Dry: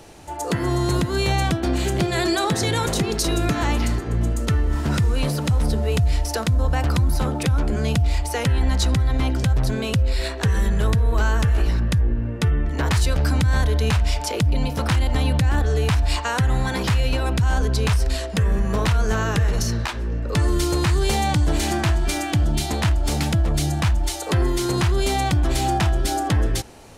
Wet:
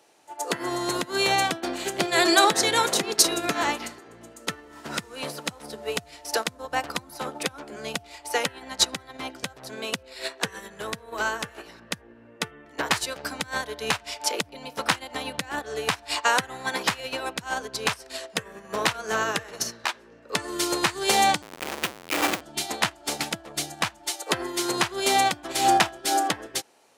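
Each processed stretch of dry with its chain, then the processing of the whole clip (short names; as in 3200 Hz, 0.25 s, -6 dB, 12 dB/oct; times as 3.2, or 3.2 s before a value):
21.42–22.41 EQ curve 110 Hz 0 dB, 170 Hz -9 dB, 300 Hz -9 dB, 690 Hz -15 dB, 1100 Hz -11 dB, 1700 Hz -10 dB, 2500 Hz 0 dB, 5000 Hz -17 dB, 12000 Hz -9 dB + Schmitt trigger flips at -33.5 dBFS
whole clip: Bessel high-pass 480 Hz, order 2; upward expander 2.5:1, over -35 dBFS; gain +8.5 dB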